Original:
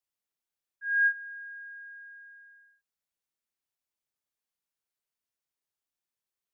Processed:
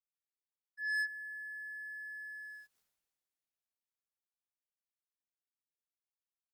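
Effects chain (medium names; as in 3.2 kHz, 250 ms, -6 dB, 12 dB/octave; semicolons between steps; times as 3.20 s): Doppler pass-by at 2.78 s, 17 m/s, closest 1.5 m; waveshaping leveller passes 2; trim +14.5 dB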